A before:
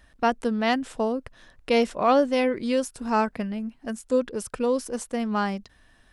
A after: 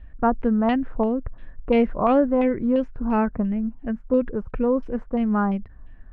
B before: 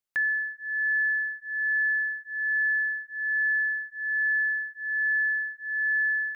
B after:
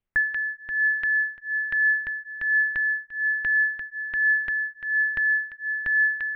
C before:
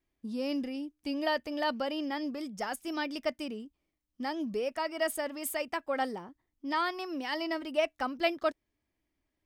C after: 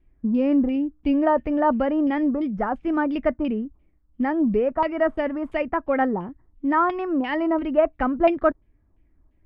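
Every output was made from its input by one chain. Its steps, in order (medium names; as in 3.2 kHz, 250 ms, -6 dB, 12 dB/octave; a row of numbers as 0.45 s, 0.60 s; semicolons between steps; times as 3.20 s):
LFO low-pass saw down 2.9 Hz 1–3 kHz; tilt EQ -4.5 dB/octave; normalise loudness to -23 LUFS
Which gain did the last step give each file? -4.0 dB, +1.5 dB, +5.5 dB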